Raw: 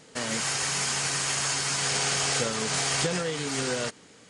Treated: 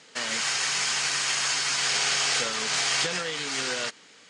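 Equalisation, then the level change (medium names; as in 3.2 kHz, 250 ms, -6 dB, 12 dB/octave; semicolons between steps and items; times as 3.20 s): high-pass 150 Hz 12 dB/octave; distance through air 88 m; tilt shelf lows -7.5 dB; 0.0 dB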